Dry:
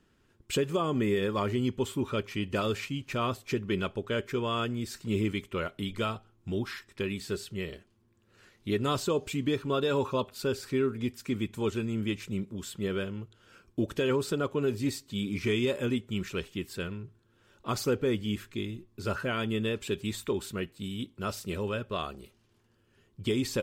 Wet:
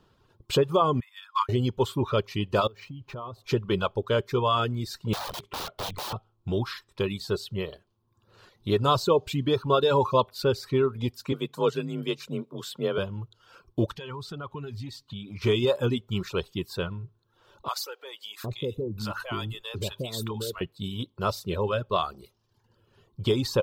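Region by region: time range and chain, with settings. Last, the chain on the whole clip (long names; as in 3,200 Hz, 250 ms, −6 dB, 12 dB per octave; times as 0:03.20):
0:01.00–0:01.49: Butterworth high-pass 930 Hz 96 dB per octave + expander for the loud parts 2.5 to 1, over −43 dBFS
0:02.67–0:03.44: high-shelf EQ 2,300 Hz −9.5 dB + downward compressor 12 to 1, threshold −40 dBFS + linearly interpolated sample-rate reduction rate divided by 2×
0:05.13–0:06.13: low-pass filter 10,000 Hz + wrap-around overflow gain 33.5 dB
0:11.32–0:12.98: low-shelf EQ 91 Hz −10.5 dB + frequency shifter +36 Hz
0:13.91–0:15.42: parametric band 490 Hz −11 dB 1.4 octaves + downward compressor 3 to 1, threshold −39 dBFS + low-pass filter 3,900 Hz 6 dB per octave
0:17.68–0:20.61: high-shelf EQ 5,500 Hz +7.5 dB + downward compressor 3 to 1, threshold −33 dBFS + multiband delay without the direct sound highs, lows 760 ms, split 630 Hz
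whole clip: reverb reduction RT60 0.8 s; graphic EQ with 10 bands 125 Hz +6 dB, 250 Hz −5 dB, 500 Hz +4 dB, 1,000 Hz +9 dB, 2,000 Hz −8 dB, 4,000 Hz +7 dB, 8,000 Hz −7 dB; level +3.5 dB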